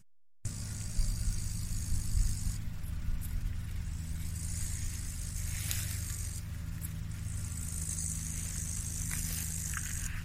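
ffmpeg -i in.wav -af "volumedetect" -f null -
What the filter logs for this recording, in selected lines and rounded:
mean_volume: -35.1 dB
max_volume: -13.3 dB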